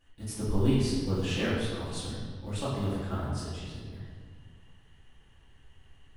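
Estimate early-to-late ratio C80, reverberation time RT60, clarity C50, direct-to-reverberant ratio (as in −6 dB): 1.5 dB, 1.8 s, −1.5 dB, −11.0 dB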